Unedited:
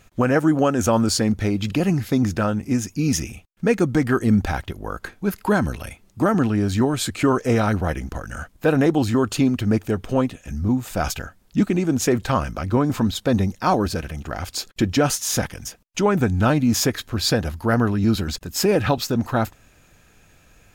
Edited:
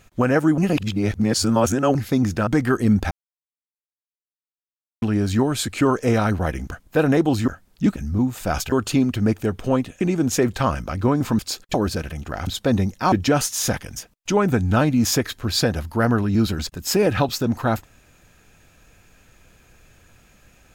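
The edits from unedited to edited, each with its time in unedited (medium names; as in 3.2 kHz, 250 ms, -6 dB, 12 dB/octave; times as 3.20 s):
0.58–1.95 s: reverse
2.47–3.89 s: delete
4.53–6.44 s: mute
8.14–8.41 s: delete
9.17–10.46 s: swap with 11.22–11.70 s
13.08–13.73 s: swap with 14.46–14.81 s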